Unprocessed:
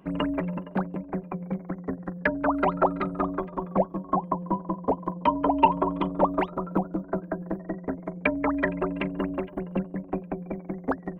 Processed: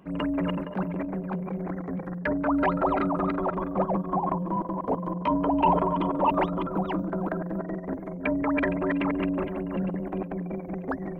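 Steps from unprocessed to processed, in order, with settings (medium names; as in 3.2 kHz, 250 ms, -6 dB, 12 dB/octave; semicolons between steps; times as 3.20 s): chunks repeated in reverse 351 ms, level -4.5 dB; transient shaper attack -6 dB, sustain +6 dB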